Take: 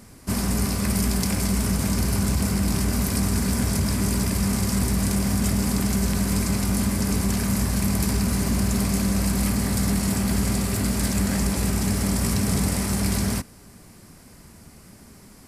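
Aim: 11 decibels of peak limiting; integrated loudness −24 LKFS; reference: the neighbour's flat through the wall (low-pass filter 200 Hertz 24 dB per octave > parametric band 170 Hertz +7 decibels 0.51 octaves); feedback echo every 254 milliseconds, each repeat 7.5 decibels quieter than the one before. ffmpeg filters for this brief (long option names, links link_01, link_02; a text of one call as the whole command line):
ffmpeg -i in.wav -af "alimiter=limit=-21.5dB:level=0:latency=1,lowpass=frequency=200:width=0.5412,lowpass=frequency=200:width=1.3066,equalizer=frequency=170:width_type=o:width=0.51:gain=7,aecho=1:1:254|508|762|1016|1270:0.422|0.177|0.0744|0.0312|0.0131,volume=4.5dB" out.wav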